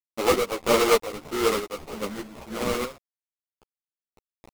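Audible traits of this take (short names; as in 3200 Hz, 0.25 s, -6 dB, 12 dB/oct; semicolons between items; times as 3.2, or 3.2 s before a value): a quantiser's noise floor 6-bit, dither none; chopped level 1.6 Hz, depth 60%, duty 55%; aliases and images of a low sample rate 1700 Hz, jitter 20%; a shimmering, thickened sound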